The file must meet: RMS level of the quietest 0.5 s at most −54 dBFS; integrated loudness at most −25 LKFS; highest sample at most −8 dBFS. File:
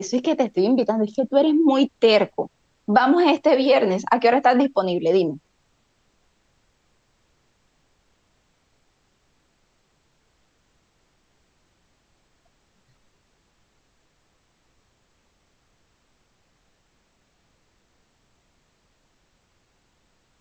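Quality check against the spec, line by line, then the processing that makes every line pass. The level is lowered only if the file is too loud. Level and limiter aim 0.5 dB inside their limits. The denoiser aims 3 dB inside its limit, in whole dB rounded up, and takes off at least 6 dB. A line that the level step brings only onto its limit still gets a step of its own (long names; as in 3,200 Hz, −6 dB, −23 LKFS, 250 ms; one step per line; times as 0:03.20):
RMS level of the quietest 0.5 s −66 dBFS: in spec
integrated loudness −19.0 LKFS: out of spec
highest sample −3.0 dBFS: out of spec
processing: level −6.5 dB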